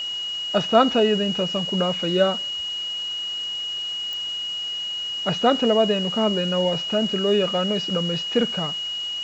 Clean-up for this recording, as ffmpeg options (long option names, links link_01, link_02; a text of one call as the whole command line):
ffmpeg -i in.wav -af "adeclick=threshold=4,bandreject=frequency=2900:width=30,afwtdn=0.0079" out.wav